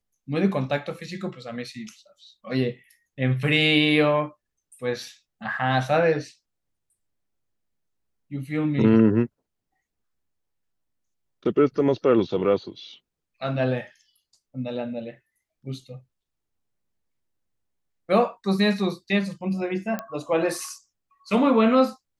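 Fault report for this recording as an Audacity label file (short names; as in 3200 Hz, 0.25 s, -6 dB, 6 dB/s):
19.990000	19.990000	pop -15 dBFS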